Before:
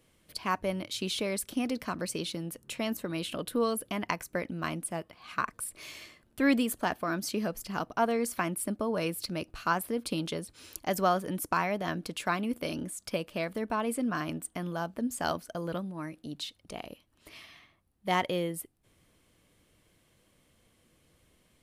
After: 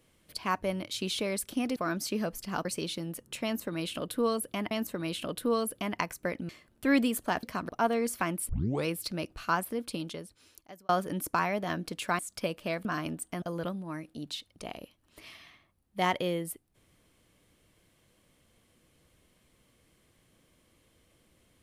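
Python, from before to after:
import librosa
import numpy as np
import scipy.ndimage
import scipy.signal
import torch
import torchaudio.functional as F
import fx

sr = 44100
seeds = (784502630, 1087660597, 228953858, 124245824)

y = fx.edit(x, sr, fx.swap(start_s=1.76, length_s=0.26, other_s=6.98, other_length_s=0.89),
    fx.repeat(start_s=2.81, length_s=1.27, count=2),
    fx.cut(start_s=4.59, length_s=1.45),
    fx.tape_start(start_s=8.67, length_s=0.37),
    fx.fade_out_span(start_s=9.68, length_s=1.39),
    fx.cut(start_s=12.37, length_s=0.52),
    fx.cut(start_s=13.55, length_s=0.53),
    fx.cut(start_s=14.65, length_s=0.86), tone=tone)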